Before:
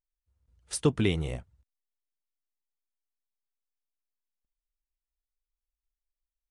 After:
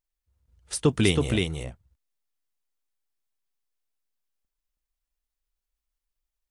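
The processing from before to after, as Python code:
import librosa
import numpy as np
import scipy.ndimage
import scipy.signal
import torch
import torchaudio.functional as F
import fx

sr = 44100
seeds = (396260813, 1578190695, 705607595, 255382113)

p1 = fx.high_shelf(x, sr, hz=4000.0, db=11.0, at=(0.89, 1.32))
p2 = fx.level_steps(p1, sr, step_db=13)
p3 = p1 + F.gain(torch.from_numpy(p2), -2.5).numpy()
y = p3 + 10.0 ** (-3.5 / 20.0) * np.pad(p3, (int(323 * sr / 1000.0), 0))[:len(p3)]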